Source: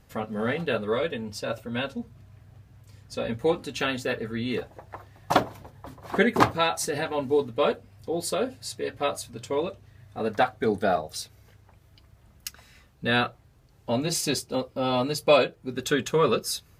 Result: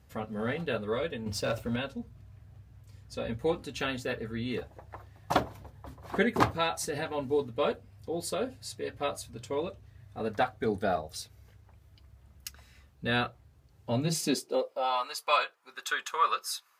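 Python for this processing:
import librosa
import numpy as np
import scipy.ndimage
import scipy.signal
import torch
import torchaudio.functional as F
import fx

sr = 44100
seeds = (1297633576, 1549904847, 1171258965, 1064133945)

y = fx.leveller(x, sr, passes=2, at=(1.26, 1.76))
y = fx.filter_sweep_highpass(y, sr, from_hz=64.0, to_hz=1100.0, start_s=13.74, end_s=15.01, q=2.6)
y = y * librosa.db_to_amplitude(-5.5)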